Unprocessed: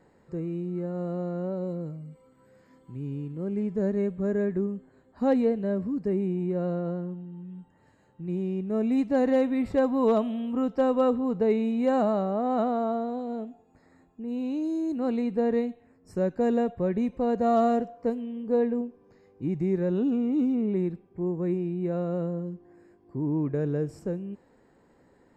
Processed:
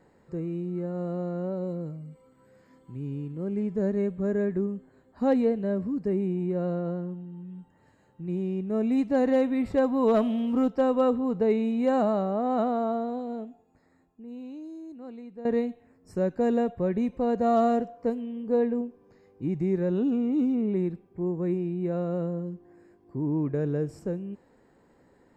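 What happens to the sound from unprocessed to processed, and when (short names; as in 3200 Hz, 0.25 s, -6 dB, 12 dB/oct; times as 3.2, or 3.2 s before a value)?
10.14–10.68 sample leveller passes 1
13.14–15.45 fade out quadratic, to -15.5 dB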